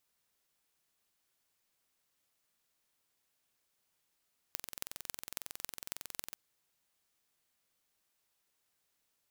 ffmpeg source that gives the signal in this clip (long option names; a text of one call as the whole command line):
ffmpeg -f lavfi -i "aevalsrc='0.355*eq(mod(n,2014),0)*(0.5+0.5*eq(mod(n,12084),0))':duration=1.8:sample_rate=44100" out.wav